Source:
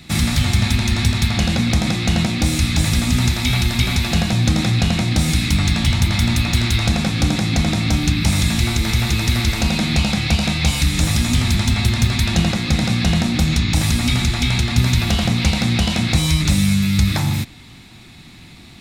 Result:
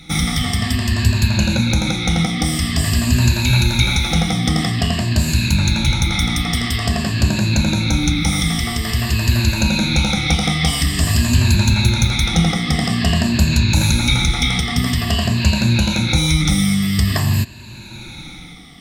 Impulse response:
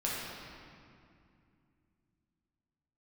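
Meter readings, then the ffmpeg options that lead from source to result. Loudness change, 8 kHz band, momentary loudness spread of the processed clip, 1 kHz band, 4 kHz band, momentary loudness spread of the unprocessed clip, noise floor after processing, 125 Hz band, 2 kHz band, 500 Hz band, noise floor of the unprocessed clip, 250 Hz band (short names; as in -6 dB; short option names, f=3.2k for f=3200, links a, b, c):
+1.0 dB, +1.5 dB, 4 LU, +1.5 dB, +1.5 dB, 2 LU, -35 dBFS, +0.5 dB, +1.5 dB, +1.0 dB, -41 dBFS, +0.5 dB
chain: -af "afftfilt=real='re*pow(10,15/40*sin(2*PI*(1.4*log(max(b,1)*sr/1024/100)/log(2)-(-0.49)*(pts-256)/sr)))':imag='im*pow(10,15/40*sin(2*PI*(1.4*log(max(b,1)*sr/1024/100)/log(2)-(-0.49)*(pts-256)/sr)))':win_size=1024:overlap=0.75,dynaudnorm=f=100:g=13:m=11.5dB,volume=-2dB"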